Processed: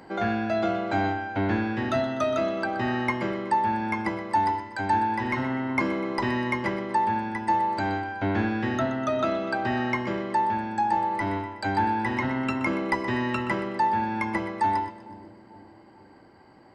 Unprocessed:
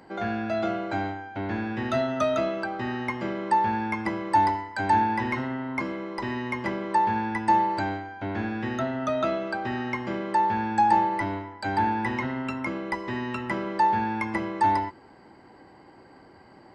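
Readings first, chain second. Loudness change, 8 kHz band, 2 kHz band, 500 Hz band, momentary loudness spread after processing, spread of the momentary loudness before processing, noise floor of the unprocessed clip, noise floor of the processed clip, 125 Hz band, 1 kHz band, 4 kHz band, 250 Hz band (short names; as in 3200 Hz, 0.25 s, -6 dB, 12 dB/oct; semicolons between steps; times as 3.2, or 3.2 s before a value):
+0.5 dB, n/a, +2.0 dB, +1.0 dB, 4 LU, 8 LU, -52 dBFS, -52 dBFS, +2.0 dB, -1.0 dB, +1.5 dB, +1.5 dB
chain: vocal rider 0.5 s; on a send: split-band echo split 680 Hz, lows 0.447 s, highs 0.124 s, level -14 dB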